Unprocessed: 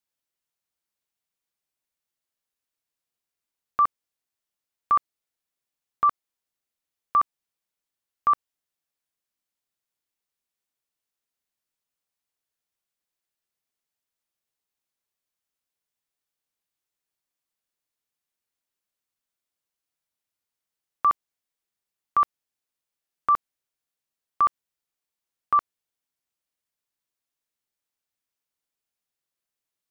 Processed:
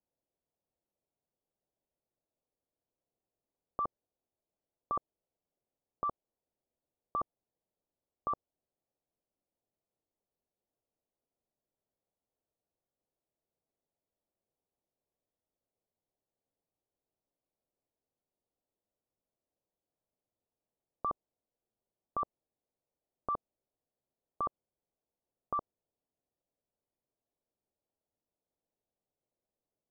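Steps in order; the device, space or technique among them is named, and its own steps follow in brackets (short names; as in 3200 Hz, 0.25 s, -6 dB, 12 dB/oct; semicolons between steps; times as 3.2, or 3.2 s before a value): overdriven synthesiser ladder filter (soft clip -22.5 dBFS, distortion -13 dB; ladder low-pass 790 Hz, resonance 30%); gain +11.5 dB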